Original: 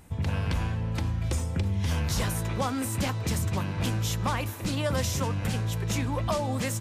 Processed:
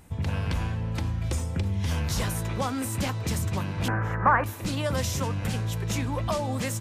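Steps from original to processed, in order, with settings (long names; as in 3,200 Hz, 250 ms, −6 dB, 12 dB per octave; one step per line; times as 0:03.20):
0:03.88–0:04.44: drawn EQ curve 210 Hz 0 dB, 1,700 Hz +14 dB, 3,500 Hz −24 dB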